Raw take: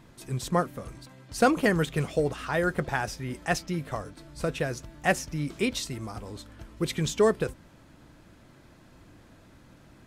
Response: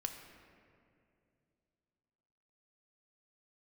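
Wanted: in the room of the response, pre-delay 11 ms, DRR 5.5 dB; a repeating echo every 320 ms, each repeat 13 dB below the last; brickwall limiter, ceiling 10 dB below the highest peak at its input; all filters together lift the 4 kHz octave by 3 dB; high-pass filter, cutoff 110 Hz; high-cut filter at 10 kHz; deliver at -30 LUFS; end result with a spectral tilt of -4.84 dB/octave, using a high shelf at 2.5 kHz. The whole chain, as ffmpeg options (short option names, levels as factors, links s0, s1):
-filter_complex "[0:a]highpass=110,lowpass=10000,highshelf=f=2500:g=-6,equalizer=f=4000:t=o:g=9,alimiter=limit=0.0944:level=0:latency=1,aecho=1:1:320|640|960:0.224|0.0493|0.0108,asplit=2[s0][s1];[1:a]atrim=start_sample=2205,adelay=11[s2];[s1][s2]afir=irnorm=-1:irlink=0,volume=0.562[s3];[s0][s3]amix=inputs=2:normalize=0,volume=1.26"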